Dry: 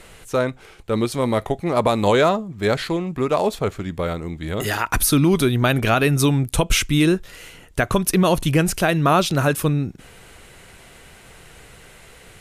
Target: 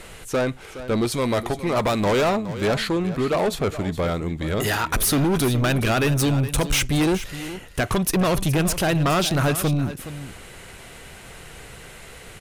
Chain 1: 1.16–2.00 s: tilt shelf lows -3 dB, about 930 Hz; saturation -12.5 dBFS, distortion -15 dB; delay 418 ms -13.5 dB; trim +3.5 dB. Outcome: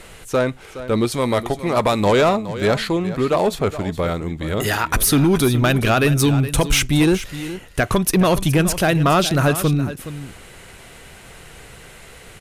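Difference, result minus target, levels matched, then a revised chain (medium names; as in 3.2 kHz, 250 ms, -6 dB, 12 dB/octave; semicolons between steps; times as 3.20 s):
saturation: distortion -8 dB
1.16–2.00 s: tilt shelf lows -3 dB, about 930 Hz; saturation -20.5 dBFS, distortion -8 dB; delay 418 ms -13.5 dB; trim +3.5 dB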